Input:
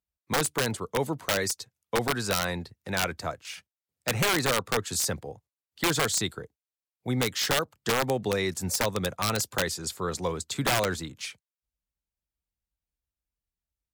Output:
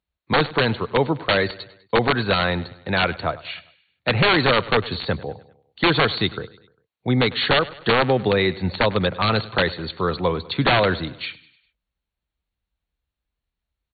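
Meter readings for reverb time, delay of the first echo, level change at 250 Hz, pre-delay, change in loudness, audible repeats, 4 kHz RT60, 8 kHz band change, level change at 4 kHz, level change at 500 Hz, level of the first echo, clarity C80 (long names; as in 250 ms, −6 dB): no reverb audible, 100 ms, +8.5 dB, no reverb audible, +7.5 dB, 3, no reverb audible, below −40 dB, +7.0 dB, +8.5 dB, −19.0 dB, no reverb audible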